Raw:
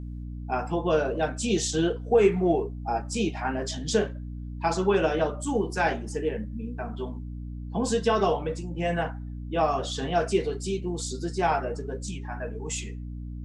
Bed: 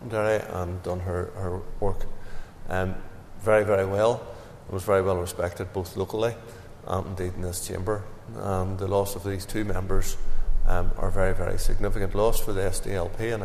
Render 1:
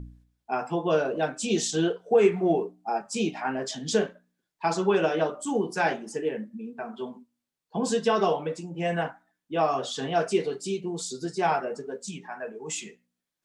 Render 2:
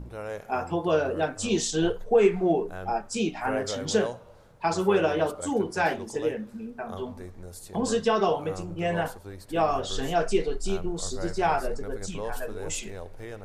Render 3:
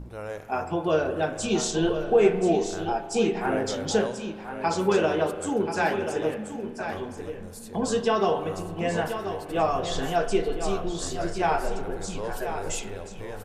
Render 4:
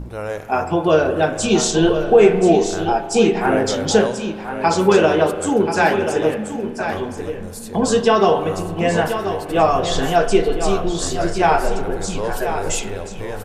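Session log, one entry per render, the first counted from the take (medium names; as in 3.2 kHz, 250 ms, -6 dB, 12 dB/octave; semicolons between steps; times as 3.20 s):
de-hum 60 Hz, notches 5
add bed -12 dB
on a send: delay 1032 ms -9 dB; on the sum: spring tank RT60 2.3 s, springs 38 ms, chirp 80 ms, DRR 10.5 dB
trim +9 dB; peak limiter -2 dBFS, peak gain reduction 2.5 dB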